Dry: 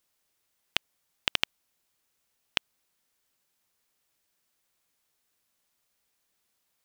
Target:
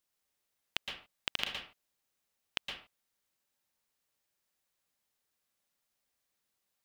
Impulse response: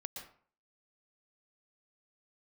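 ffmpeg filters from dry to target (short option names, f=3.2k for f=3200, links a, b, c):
-filter_complex "[1:a]atrim=start_sample=2205,afade=t=out:st=0.34:d=0.01,atrim=end_sample=15435[a];[0:a][a]afir=irnorm=-1:irlink=0,volume=-3.5dB"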